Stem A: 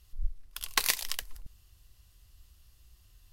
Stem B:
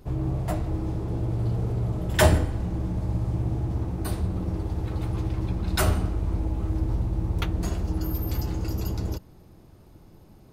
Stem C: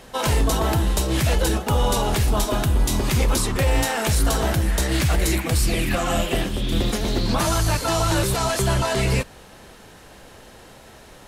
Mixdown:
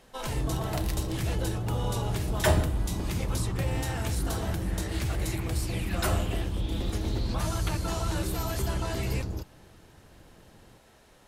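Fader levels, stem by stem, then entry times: -14.0, -5.0, -12.5 dB; 0.00, 0.25, 0.00 s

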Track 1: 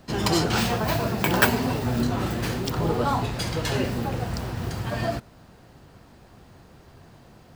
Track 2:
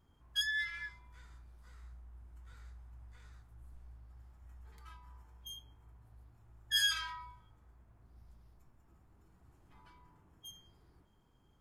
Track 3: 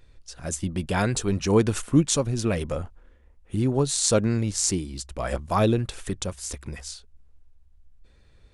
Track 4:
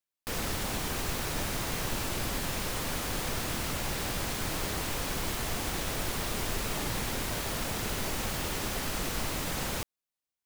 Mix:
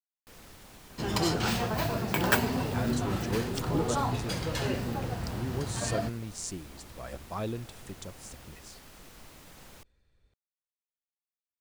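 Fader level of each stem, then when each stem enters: -5.5 dB, off, -13.5 dB, -18.5 dB; 0.90 s, off, 1.80 s, 0.00 s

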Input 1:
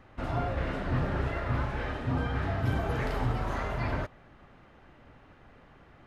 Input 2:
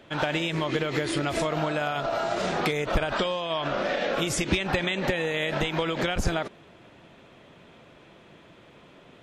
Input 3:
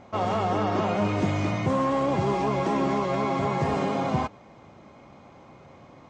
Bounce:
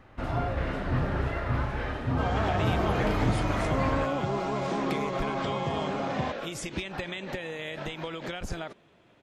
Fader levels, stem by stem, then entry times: +1.5, -9.0, -5.5 dB; 0.00, 2.25, 2.05 s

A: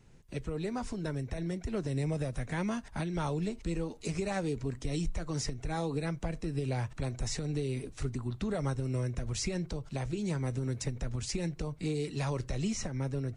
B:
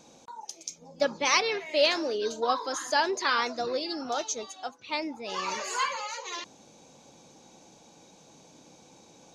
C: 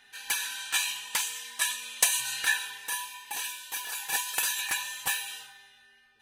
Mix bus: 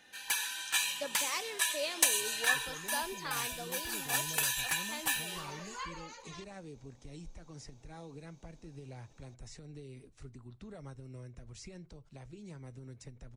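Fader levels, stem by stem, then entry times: -15.0, -13.5, -3.0 dB; 2.20, 0.00, 0.00 s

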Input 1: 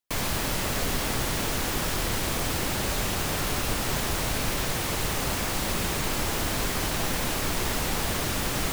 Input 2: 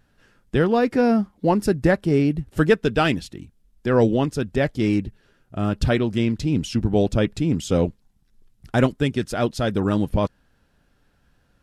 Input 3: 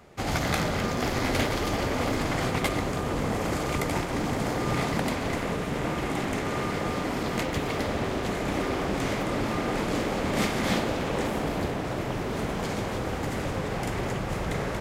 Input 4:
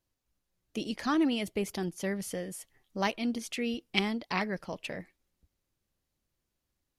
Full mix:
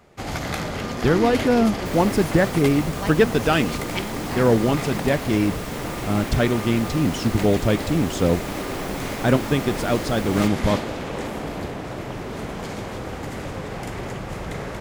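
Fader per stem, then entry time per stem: -8.5, 0.0, -1.0, -2.0 dB; 1.75, 0.50, 0.00, 0.00 s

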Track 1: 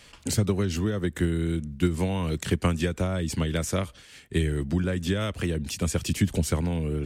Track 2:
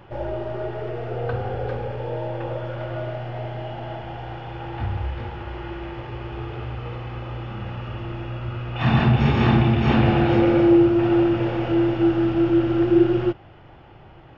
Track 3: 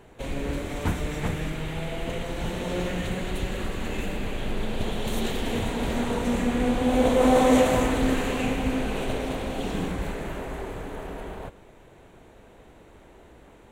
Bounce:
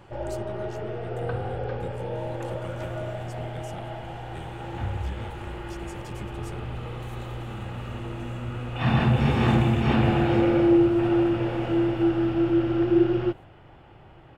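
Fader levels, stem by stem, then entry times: -17.5, -3.5, -17.5 dB; 0.00, 0.00, 1.95 s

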